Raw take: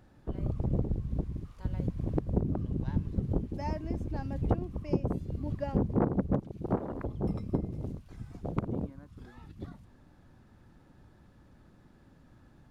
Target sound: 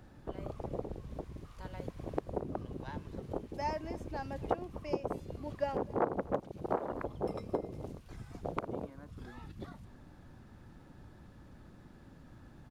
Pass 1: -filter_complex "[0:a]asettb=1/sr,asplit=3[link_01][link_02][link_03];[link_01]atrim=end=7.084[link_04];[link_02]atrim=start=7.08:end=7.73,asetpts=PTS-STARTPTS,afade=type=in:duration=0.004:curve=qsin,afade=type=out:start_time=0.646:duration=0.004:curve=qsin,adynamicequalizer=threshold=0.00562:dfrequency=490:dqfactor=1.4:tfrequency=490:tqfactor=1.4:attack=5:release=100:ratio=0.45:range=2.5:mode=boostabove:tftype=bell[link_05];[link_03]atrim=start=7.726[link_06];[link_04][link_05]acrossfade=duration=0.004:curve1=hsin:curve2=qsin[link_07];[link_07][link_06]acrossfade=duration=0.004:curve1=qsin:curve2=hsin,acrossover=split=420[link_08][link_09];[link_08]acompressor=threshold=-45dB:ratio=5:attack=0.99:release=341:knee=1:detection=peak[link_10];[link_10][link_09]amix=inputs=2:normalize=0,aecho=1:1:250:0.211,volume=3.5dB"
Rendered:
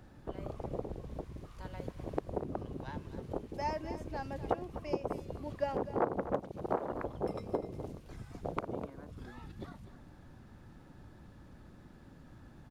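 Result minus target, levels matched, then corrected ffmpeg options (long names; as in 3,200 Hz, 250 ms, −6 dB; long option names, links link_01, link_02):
echo-to-direct +10.5 dB
-filter_complex "[0:a]asettb=1/sr,asplit=3[link_01][link_02][link_03];[link_01]atrim=end=7.084[link_04];[link_02]atrim=start=7.08:end=7.73,asetpts=PTS-STARTPTS,afade=type=in:duration=0.004:curve=qsin,afade=type=out:start_time=0.646:duration=0.004:curve=qsin,adynamicequalizer=threshold=0.00562:dfrequency=490:dqfactor=1.4:tfrequency=490:tqfactor=1.4:attack=5:release=100:ratio=0.45:range=2.5:mode=boostabove:tftype=bell[link_05];[link_03]atrim=start=7.726[link_06];[link_04][link_05]acrossfade=duration=0.004:curve1=hsin:curve2=qsin[link_07];[link_07][link_06]acrossfade=duration=0.004:curve1=qsin:curve2=hsin,acrossover=split=420[link_08][link_09];[link_08]acompressor=threshold=-45dB:ratio=5:attack=0.99:release=341:knee=1:detection=peak[link_10];[link_10][link_09]amix=inputs=2:normalize=0,aecho=1:1:250:0.0631,volume=3.5dB"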